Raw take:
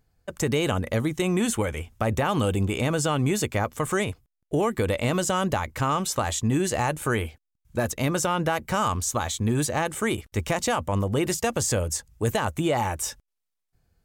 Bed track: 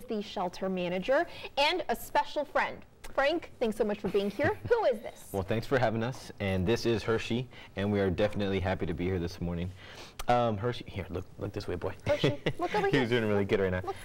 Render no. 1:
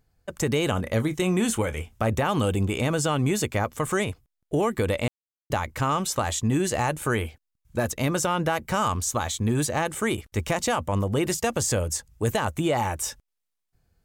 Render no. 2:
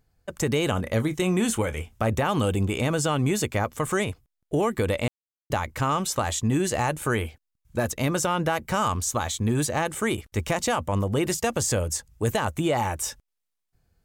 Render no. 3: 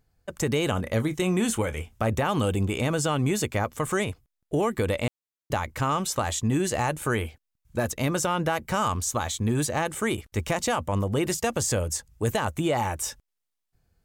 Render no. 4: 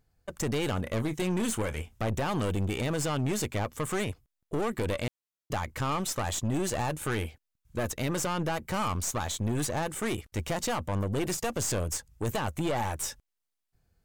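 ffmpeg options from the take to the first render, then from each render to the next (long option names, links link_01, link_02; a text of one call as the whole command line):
ffmpeg -i in.wav -filter_complex "[0:a]asettb=1/sr,asplit=3[link_01][link_02][link_03];[link_01]atrim=end=0.744[link_04];[link_02]atrim=start=0.74:end=2.1,asetpts=PTS-STARTPTS,afade=type=in:duration=0.004:curve=qsin,afade=type=out:start_time=1.356:duration=0.004:curve=qsin,asplit=2[link_05][link_06];[link_06]adelay=27,volume=-13dB[link_07];[link_05][link_07]amix=inputs=2:normalize=0,atrim=end_sample=59976[link_08];[link_03]atrim=start=2.096[link_09];[link_04][link_08]acrossfade=duration=0.004:curve1=hsin:curve2=qsin[link_10];[link_10][link_09]acrossfade=duration=0.004:curve1=qsin:curve2=hsin,asplit=3[link_11][link_12][link_13];[link_11]atrim=end=5.08,asetpts=PTS-STARTPTS,afade=type=out:start_time=5.076:duration=0.004:curve=hsin[link_14];[link_12]atrim=start=5.08:end=5.5,asetpts=PTS-STARTPTS,volume=0[link_15];[link_13]atrim=start=5.5,asetpts=PTS-STARTPTS,afade=type=in:duration=0.004:curve=hsin[link_16];[link_14][link_15][link_16]concat=n=3:v=0:a=1" out.wav
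ffmpeg -i in.wav -af anull out.wav
ffmpeg -i in.wav -af "volume=-1dB" out.wav
ffmpeg -i in.wav -af "aeval=exprs='(tanh(17.8*val(0)+0.5)-tanh(0.5))/17.8':channel_layout=same" out.wav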